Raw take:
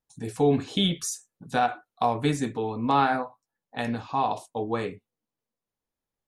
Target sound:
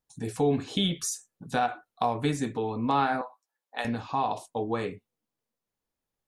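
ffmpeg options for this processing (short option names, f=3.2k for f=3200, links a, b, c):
-filter_complex "[0:a]asettb=1/sr,asplit=3[a][b][c];[a]atrim=end=3.214[d];[b]atrim=start=3.21:end=3.85,asetpts=PTS-STARTPTS,afade=t=in:d=0.004:c=qsin,afade=t=out:st=0.636:d=0.004:c=qsin,highpass=550[e];[c]atrim=start=3.846[f];[d][e]acrossfade=d=0.004:c1=hsin:c2=qsin[g];[g][f]acrossfade=d=0.004:c1=qsin:c2=hsin,asplit=2[h][i];[i]acompressor=threshold=-29dB:ratio=6,volume=2dB[j];[h][j]amix=inputs=2:normalize=0,volume=-6dB"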